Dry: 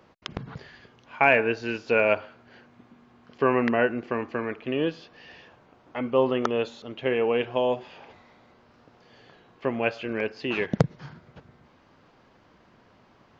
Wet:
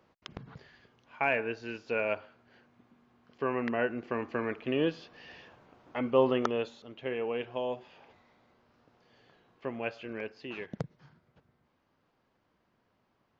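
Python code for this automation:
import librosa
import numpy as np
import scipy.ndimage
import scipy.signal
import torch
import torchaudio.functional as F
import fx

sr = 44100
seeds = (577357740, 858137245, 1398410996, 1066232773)

y = fx.gain(x, sr, db=fx.line((3.53, -9.5), (4.47, -2.5), (6.34, -2.5), (6.87, -9.5), (10.15, -9.5), (10.9, -16.0)))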